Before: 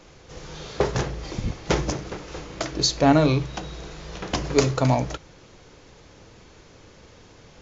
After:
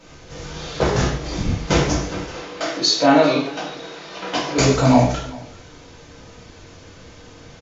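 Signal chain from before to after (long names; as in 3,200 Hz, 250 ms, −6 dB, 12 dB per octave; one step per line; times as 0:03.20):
0:02.29–0:04.58: band-pass filter 320–5,300 Hz
single-tap delay 390 ms −21.5 dB
reverb whose tail is shaped and stops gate 190 ms falling, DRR −8 dB
level −2 dB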